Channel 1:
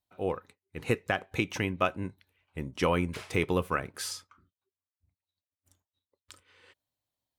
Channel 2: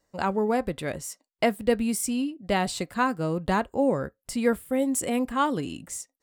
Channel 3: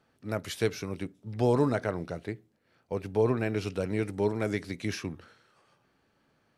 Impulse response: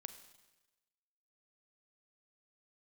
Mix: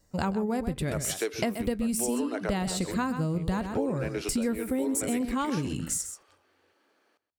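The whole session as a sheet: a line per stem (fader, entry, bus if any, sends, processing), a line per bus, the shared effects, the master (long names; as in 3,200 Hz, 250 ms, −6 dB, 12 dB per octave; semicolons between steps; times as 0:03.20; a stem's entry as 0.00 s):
−13.5 dB, 0.00 s, no send, no echo send, tilt shelving filter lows +6 dB
+1.0 dB, 0.00 s, no send, echo send −11.5 dB, bass and treble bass +12 dB, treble +7 dB
+3.0 dB, 0.60 s, no send, echo send −17 dB, Chebyshev high-pass filter 320 Hz, order 3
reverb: not used
echo: single-tap delay 129 ms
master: downward compressor, threshold −26 dBFS, peak gain reduction 12.5 dB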